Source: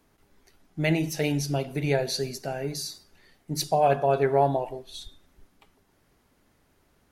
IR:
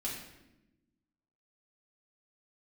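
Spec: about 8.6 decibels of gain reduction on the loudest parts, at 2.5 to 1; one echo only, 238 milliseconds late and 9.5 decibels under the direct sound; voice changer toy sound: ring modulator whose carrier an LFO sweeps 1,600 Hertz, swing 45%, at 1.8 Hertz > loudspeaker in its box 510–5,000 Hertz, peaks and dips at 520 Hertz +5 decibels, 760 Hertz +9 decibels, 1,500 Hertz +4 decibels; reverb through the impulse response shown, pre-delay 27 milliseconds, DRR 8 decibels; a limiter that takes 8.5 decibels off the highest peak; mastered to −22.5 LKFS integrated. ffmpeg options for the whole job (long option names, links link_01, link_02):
-filter_complex "[0:a]acompressor=threshold=-30dB:ratio=2.5,alimiter=level_in=2.5dB:limit=-24dB:level=0:latency=1,volume=-2.5dB,aecho=1:1:238:0.335,asplit=2[link_01][link_02];[1:a]atrim=start_sample=2205,adelay=27[link_03];[link_02][link_03]afir=irnorm=-1:irlink=0,volume=-10dB[link_04];[link_01][link_04]amix=inputs=2:normalize=0,aeval=exprs='val(0)*sin(2*PI*1600*n/s+1600*0.45/1.8*sin(2*PI*1.8*n/s))':channel_layout=same,highpass=510,equalizer=frequency=520:width_type=q:width=4:gain=5,equalizer=frequency=760:width_type=q:width=4:gain=9,equalizer=frequency=1500:width_type=q:width=4:gain=4,lowpass=frequency=5000:width=0.5412,lowpass=frequency=5000:width=1.3066,volume=12.5dB"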